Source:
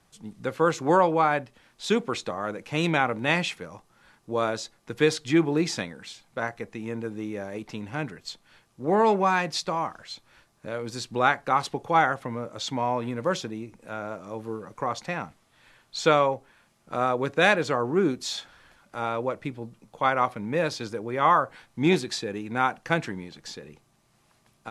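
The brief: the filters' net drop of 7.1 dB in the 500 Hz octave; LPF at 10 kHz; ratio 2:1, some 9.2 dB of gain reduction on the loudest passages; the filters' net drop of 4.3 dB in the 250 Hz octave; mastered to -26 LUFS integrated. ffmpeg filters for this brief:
-af "lowpass=10000,equalizer=f=250:t=o:g=-3,equalizer=f=500:t=o:g=-8,acompressor=threshold=0.0178:ratio=2,volume=3.35"

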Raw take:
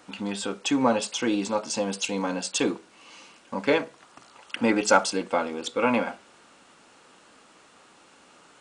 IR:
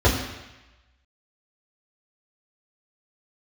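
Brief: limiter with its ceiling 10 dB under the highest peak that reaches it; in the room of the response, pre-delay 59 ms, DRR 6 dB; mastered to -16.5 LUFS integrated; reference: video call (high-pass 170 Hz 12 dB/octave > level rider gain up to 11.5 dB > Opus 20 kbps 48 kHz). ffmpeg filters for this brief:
-filter_complex "[0:a]alimiter=limit=0.188:level=0:latency=1,asplit=2[s0][s1];[1:a]atrim=start_sample=2205,adelay=59[s2];[s1][s2]afir=irnorm=-1:irlink=0,volume=0.0531[s3];[s0][s3]amix=inputs=2:normalize=0,highpass=170,dynaudnorm=m=3.76,volume=3.16" -ar 48000 -c:a libopus -b:a 20k

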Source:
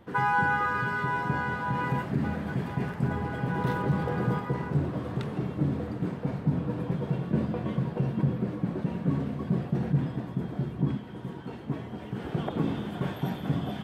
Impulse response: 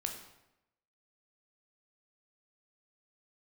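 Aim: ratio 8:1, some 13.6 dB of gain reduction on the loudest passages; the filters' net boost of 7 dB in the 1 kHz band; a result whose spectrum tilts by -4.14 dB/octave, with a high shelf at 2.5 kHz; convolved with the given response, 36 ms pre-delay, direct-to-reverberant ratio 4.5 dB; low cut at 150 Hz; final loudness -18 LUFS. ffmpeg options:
-filter_complex "[0:a]highpass=150,equalizer=f=1000:t=o:g=7.5,highshelf=f=2500:g=4,acompressor=threshold=0.0316:ratio=8,asplit=2[s0][s1];[1:a]atrim=start_sample=2205,adelay=36[s2];[s1][s2]afir=irnorm=-1:irlink=0,volume=0.562[s3];[s0][s3]amix=inputs=2:normalize=0,volume=6.31"

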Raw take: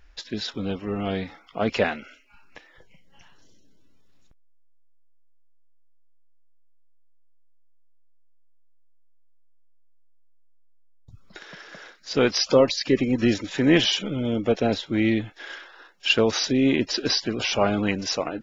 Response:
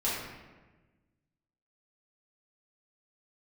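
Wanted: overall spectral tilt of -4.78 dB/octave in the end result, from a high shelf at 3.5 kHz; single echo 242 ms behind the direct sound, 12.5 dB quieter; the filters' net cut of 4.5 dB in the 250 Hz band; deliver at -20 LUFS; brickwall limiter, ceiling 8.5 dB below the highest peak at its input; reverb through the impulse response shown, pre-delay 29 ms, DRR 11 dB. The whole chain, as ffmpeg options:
-filter_complex "[0:a]equalizer=f=250:t=o:g=-5.5,highshelf=f=3500:g=-9,alimiter=limit=0.158:level=0:latency=1,aecho=1:1:242:0.237,asplit=2[s0][s1];[1:a]atrim=start_sample=2205,adelay=29[s2];[s1][s2]afir=irnorm=-1:irlink=0,volume=0.106[s3];[s0][s3]amix=inputs=2:normalize=0,volume=2.66"

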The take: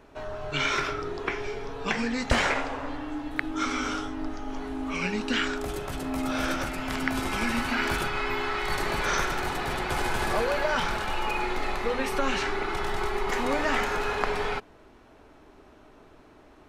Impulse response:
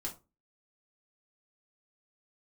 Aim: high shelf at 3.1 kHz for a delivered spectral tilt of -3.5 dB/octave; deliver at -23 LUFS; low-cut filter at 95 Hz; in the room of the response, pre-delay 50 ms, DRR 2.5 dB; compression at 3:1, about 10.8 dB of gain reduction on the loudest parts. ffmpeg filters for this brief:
-filter_complex "[0:a]highpass=95,highshelf=f=3100:g=5.5,acompressor=threshold=0.0141:ratio=3,asplit=2[s0][s1];[1:a]atrim=start_sample=2205,adelay=50[s2];[s1][s2]afir=irnorm=-1:irlink=0,volume=0.794[s3];[s0][s3]amix=inputs=2:normalize=0,volume=3.55"

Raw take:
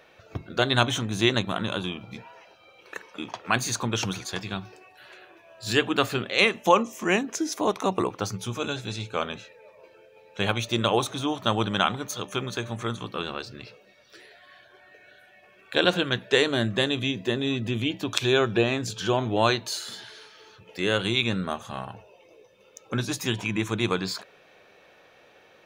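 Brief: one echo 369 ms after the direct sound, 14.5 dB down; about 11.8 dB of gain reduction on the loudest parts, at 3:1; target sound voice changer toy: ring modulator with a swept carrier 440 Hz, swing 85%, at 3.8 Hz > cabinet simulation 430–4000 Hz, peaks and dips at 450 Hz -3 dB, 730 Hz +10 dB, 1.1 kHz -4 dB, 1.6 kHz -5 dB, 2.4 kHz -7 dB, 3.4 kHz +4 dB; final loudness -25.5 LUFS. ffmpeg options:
-af "acompressor=threshold=0.0316:ratio=3,aecho=1:1:369:0.188,aeval=exprs='val(0)*sin(2*PI*440*n/s+440*0.85/3.8*sin(2*PI*3.8*n/s))':c=same,highpass=430,equalizer=f=450:t=q:w=4:g=-3,equalizer=f=730:t=q:w=4:g=10,equalizer=f=1100:t=q:w=4:g=-4,equalizer=f=1600:t=q:w=4:g=-5,equalizer=f=2400:t=q:w=4:g=-7,equalizer=f=3400:t=q:w=4:g=4,lowpass=f=4000:w=0.5412,lowpass=f=4000:w=1.3066,volume=3.76"

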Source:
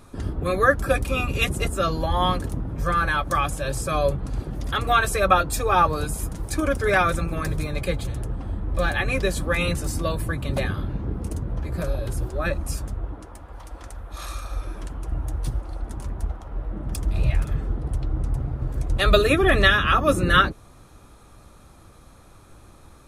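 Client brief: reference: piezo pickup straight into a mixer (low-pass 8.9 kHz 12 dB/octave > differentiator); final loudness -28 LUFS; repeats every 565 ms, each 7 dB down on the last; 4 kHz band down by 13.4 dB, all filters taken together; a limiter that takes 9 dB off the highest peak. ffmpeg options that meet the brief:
-af "equalizer=f=4000:t=o:g=-9,alimiter=limit=0.224:level=0:latency=1,lowpass=8900,aderivative,aecho=1:1:565|1130|1695|2260|2825:0.447|0.201|0.0905|0.0407|0.0183,volume=3.98"

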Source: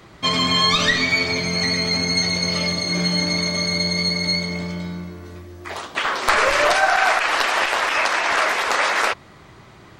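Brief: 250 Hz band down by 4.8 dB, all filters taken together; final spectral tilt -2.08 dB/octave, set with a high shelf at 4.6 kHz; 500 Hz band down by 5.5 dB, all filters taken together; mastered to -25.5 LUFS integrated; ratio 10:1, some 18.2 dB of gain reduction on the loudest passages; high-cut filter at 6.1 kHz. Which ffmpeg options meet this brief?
-af "lowpass=6100,equalizer=f=250:t=o:g=-7,equalizer=f=500:t=o:g=-6,highshelf=f=4600:g=9,acompressor=threshold=0.0251:ratio=10,volume=2.37"

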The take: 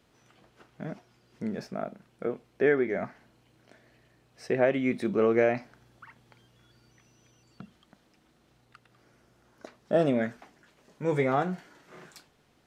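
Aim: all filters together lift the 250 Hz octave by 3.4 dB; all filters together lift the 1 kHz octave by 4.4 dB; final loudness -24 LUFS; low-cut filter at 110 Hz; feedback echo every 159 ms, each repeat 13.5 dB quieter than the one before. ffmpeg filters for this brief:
-af "highpass=110,equalizer=f=250:t=o:g=4,equalizer=f=1000:t=o:g=6.5,aecho=1:1:159|318:0.211|0.0444,volume=1.26"

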